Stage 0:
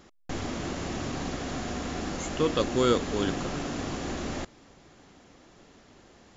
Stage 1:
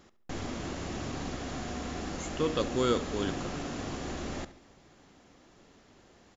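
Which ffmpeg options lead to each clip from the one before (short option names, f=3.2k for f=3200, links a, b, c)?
-filter_complex "[0:a]asplit=2[a][b];[b]adelay=70,lowpass=f=4.9k:p=1,volume=-15dB,asplit=2[c][d];[d]adelay=70,lowpass=f=4.9k:p=1,volume=0.47,asplit=2[e][f];[f]adelay=70,lowpass=f=4.9k:p=1,volume=0.47,asplit=2[g][h];[h]adelay=70,lowpass=f=4.9k:p=1,volume=0.47[i];[a][c][e][g][i]amix=inputs=5:normalize=0,volume=-4dB"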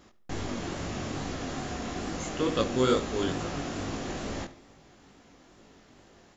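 -af "flanger=delay=18:depth=5.2:speed=2.3,volume=5.5dB"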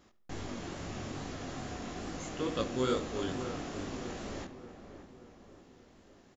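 -filter_complex "[0:a]asplit=2[a][b];[b]adelay=582,lowpass=f=1.7k:p=1,volume=-10.5dB,asplit=2[c][d];[d]adelay=582,lowpass=f=1.7k:p=1,volume=0.53,asplit=2[e][f];[f]adelay=582,lowpass=f=1.7k:p=1,volume=0.53,asplit=2[g][h];[h]adelay=582,lowpass=f=1.7k:p=1,volume=0.53,asplit=2[i][j];[j]adelay=582,lowpass=f=1.7k:p=1,volume=0.53,asplit=2[k][l];[l]adelay=582,lowpass=f=1.7k:p=1,volume=0.53[m];[a][c][e][g][i][k][m]amix=inputs=7:normalize=0,volume=-6.5dB"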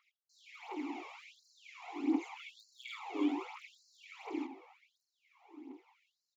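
-filter_complex "[0:a]asplit=3[a][b][c];[a]bandpass=f=300:t=q:w=8,volume=0dB[d];[b]bandpass=f=870:t=q:w=8,volume=-6dB[e];[c]bandpass=f=2.24k:t=q:w=8,volume=-9dB[f];[d][e][f]amix=inputs=3:normalize=0,aphaser=in_gain=1:out_gain=1:delay=1.9:decay=0.59:speed=1.4:type=triangular,afftfilt=real='re*gte(b*sr/1024,230*pow(4100/230,0.5+0.5*sin(2*PI*0.84*pts/sr)))':imag='im*gte(b*sr/1024,230*pow(4100/230,0.5+0.5*sin(2*PI*0.84*pts/sr)))':win_size=1024:overlap=0.75,volume=13dB"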